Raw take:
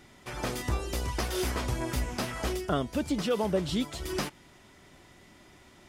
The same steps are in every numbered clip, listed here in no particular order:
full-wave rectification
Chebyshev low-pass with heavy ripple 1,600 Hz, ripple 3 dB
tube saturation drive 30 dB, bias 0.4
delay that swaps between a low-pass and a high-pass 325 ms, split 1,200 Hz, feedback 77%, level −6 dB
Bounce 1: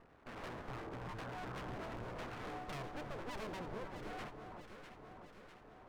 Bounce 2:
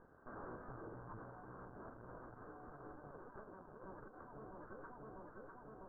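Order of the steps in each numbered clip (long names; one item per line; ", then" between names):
Chebyshev low-pass with heavy ripple, then full-wave rectification, then tube saturation, then delay that swaps between a low-pass and a high-pass
full-wave rectification, then delay that swaps between a low-pass and a high-pass, then tube saturation, then Chebyshev low-pass with heavy ripple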